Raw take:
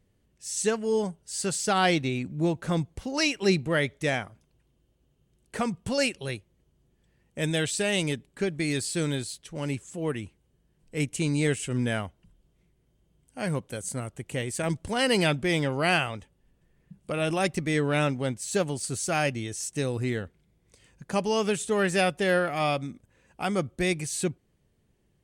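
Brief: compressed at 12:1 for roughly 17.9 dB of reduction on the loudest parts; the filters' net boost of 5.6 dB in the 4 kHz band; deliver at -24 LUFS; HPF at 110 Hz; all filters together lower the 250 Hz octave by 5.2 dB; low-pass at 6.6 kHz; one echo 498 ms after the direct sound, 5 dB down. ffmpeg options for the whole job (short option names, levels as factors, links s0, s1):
-af "highpass=110,lowpass=6600,equalizer=f=250:t=o:g=-7.5,equalizer=f=4000:t=o:g=8,acompressor=threshold=0.0141:ratio=12,aecho=1:1:498:0.562,volume=6.68"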